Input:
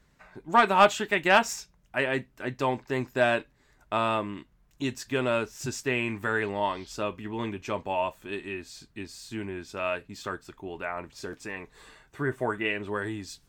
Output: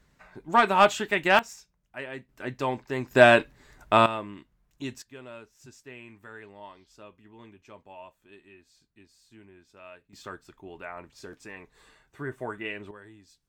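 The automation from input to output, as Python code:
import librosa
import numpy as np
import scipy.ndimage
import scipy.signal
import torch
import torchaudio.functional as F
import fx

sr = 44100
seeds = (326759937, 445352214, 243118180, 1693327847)

y = fx.gain(x, sr, db=fx.steps((0.0, 0.0), (1.39, -10.5), (2.29, -1.5), (3.11, 8.0), (4.06, -5.0), (5.02, -17.5), (10.13, -6.0), (12.91, -17.0)))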